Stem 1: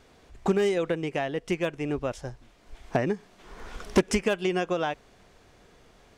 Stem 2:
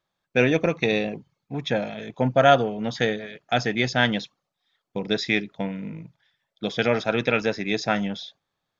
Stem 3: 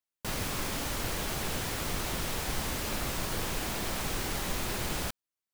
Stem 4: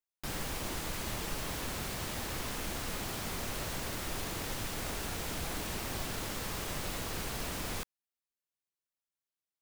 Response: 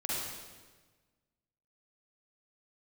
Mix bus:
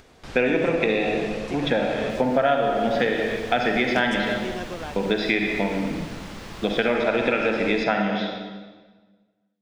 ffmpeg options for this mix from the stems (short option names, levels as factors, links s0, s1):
-filter_complex "[0:a]acompressor=mode=upward:threshold=0.0178:ratio=2.5,volume=0.447[s0];[1:a]acrossover=split=170 3800:gain=0.0891 1 0.0891[s1][s2][s3];[s1][s2][s3]amix=inputs=3:normalize=0,volume=1.33,asplit=2[s4][s5];[s5]volume=0.668[s6];[2:a]equalizer=f=15000:t=o:w=0.3:g=-9,adelay=1850,volume=0.1,asplit=2[s7][s8];[s8]volume=0.335[s9];[3:a]lowpass=4900,volume=0.794,asplit=2[s10][s11];[s11]volume=0.282[s12];[4:a]atrim=start_sample=2205[s13];[s6][s9][s12]amix=inputs=3:normalize=0[s14];[s14][s13]afir=irnorm=-1:irlink=0[s15];[s0][s4][s7][s10][s15]amix=inputs=5:normalize=0,acompressor=threshold=0.126:ratio=5"